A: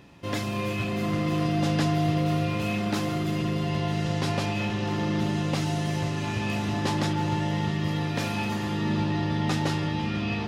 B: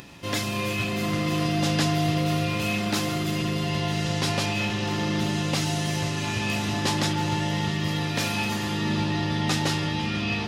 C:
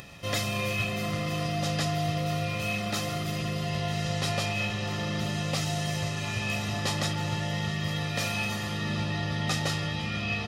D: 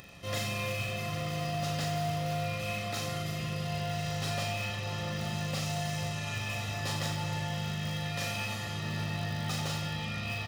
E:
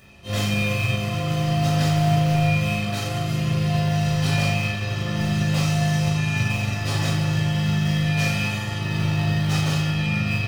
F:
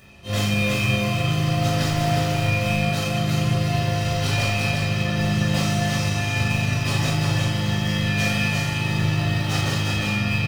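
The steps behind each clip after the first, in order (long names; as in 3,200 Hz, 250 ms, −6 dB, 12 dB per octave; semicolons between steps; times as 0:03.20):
upward compression, threshold −41 dBFS; high-shelf EQ 2,200 Hz +9 dB
comb filter 1.6 ms, depth 54%; speech leveller 2 s; level −5 dB
in parallel at −12 dB: wrap-around overflow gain 23 dB; on the sum: reverse bouncing-ball delay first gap 40 ms, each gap 1.25×, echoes 5; level −8 dB
convolution reverb RT60 0.45 s, pre-delay 4 ms, DRR −7.5 dB; expander for the loud parts 1.5 to 1, over −35 dBFS
single-tap delay 352 ms −4 dB; level +1 dB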